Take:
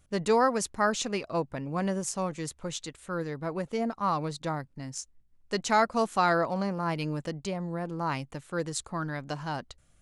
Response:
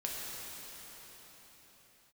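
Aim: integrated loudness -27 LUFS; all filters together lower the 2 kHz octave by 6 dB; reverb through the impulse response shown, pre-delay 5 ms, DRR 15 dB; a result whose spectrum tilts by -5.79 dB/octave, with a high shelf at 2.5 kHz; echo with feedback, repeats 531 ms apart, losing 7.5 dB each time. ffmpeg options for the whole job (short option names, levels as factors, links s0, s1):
-filter_complex "[0:a]equalizer=f=2000:t=o:g=-6.5,highshelf=f=2500:g=-5,aecho=1:1:531|1062|1593|2124|2655:0.422|0.177|0.0744|0.0312|0.0131,asplit=2[s0][s1];[1:a]atrim=start_sample=2205,adelay=5[s2];[s1][s2]afir=irnorm=-1:irlink=0,volume=0.119[s3];[s0][s3]amix=inputs=2:normalize=0,volume=1.58"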